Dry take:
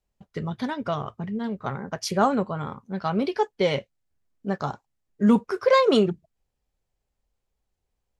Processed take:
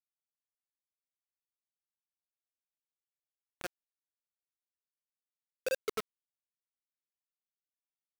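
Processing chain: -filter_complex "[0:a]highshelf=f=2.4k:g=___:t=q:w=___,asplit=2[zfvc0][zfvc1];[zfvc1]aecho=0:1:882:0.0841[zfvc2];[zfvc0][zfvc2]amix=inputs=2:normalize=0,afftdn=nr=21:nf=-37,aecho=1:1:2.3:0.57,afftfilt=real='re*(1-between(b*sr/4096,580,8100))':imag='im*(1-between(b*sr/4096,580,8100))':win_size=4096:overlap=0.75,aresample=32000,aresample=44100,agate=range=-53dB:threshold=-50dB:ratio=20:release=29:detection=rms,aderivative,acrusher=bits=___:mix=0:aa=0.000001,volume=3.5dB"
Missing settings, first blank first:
-11, 1.5, 5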